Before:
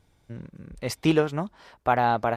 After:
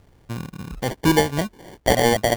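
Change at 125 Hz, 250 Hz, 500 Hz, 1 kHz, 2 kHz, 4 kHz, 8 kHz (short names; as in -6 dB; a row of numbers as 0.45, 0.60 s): +5.5, +4.5, +5.5, +0.5, +6.5, +10.5, +14.0 dB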